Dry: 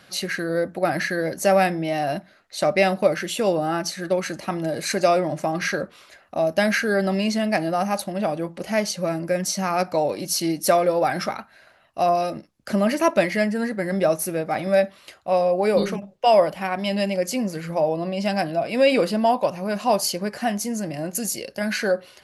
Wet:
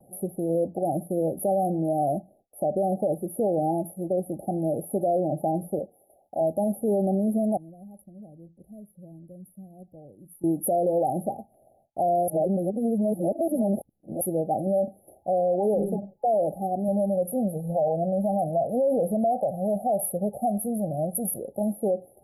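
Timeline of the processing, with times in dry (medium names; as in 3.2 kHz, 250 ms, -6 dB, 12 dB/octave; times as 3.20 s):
5.79–6.41 s: bass shelf 390 Hz -10.5 dB
7.57–10.44 s: amplifier tone stack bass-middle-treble 10-0-1
12.28–14.21 s: reverse
14.84–15.31 s: doubling 35 ms -7 dB
16.88–21.39 s: comb 1.5 ms, depth 61%
whole clip: FFT band-reject 840–10000 Hz; gate with hold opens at -52 dBFS; peak limiter -17 dBFS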